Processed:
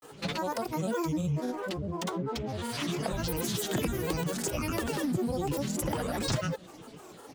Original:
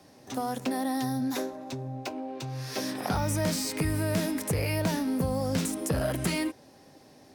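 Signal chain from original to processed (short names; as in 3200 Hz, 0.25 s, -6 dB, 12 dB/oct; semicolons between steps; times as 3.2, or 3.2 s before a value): comb 4.1 ms, depth 55%; compressor 4:1, threshold -34 dBFS, peak gain reduction 10.5 dB; grains, pitch spread up and down by 12 st; gain +6 dB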